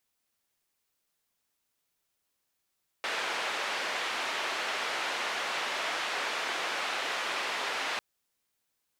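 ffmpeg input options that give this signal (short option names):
-f lavfi -i "anoisesrc=c=white:d=4.95:r=44100:seed=1,highpass=f=500,lowpass=f=2600,volume=-18.4dB"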